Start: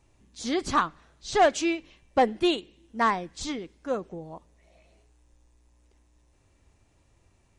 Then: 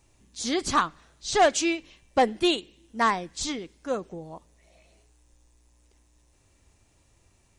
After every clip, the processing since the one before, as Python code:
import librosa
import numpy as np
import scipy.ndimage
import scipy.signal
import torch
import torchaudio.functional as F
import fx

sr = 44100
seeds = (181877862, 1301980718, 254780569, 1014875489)

y = fx.high_shelf(x, sr, hz=3900.0, db=8.5)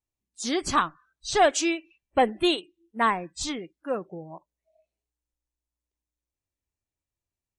y = fx.noise_reduce_blind(x, sr, reduce_db=29)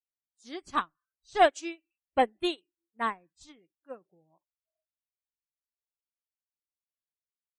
y = fx.upward_expand(x, sr, threshold_db=-33.0, expansion=2.5)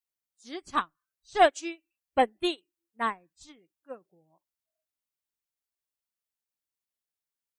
y = fx.high_shelf(x, sr, hz=8100.0, db=4.0)
y = F.gain(torch.from_numpy(y), 1.0).numpy()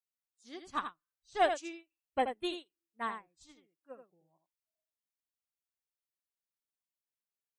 y = x + 10.0 ** (-8.0 / 20.0) * np.pad(x, (int(81 * sr / 1000.0), 0))[:len(x)]
y = F.gain(torch.from_numpy(y), -8.0).numpy()